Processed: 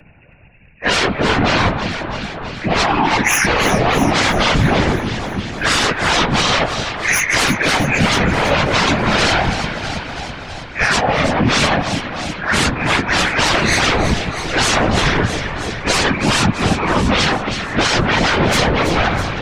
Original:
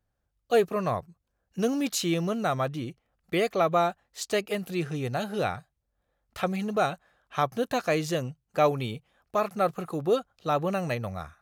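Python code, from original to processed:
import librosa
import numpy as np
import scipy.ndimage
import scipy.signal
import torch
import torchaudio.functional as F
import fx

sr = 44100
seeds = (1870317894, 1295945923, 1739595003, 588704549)

y = fx.freq_compress(x, sr, knee_hz=1400.0, ratio=4.0)
y = fx.peak_eq(y, sr, hz=1300.0, db=-10.5, octaves=0.25)
y = fx.rider(y, sr, range_db=5, speed_s=0.5)
y = fx.fold_sine(y, sr, drive_db=19, ceiling_db=-13.0)
y = fx.stretch_vocoder_free(y, sr, factor=1.7)
y = fx.echo_alternate(y, sr, ms=163, hz=1500.0, feedback_pct=75, wet_db=-8.5)
y = fx.rev_spring(y, sr, rt60_s=3.1, pass_ms=(48,), chirp_ms=50, drr_db=17.0)
y = fx.whisperise(y, sr, seeds[0])
y = fx.band_squash(y, sr, depth_pct=40)
y = F.gain(torch.from_numpy(y), 3.5).numpy()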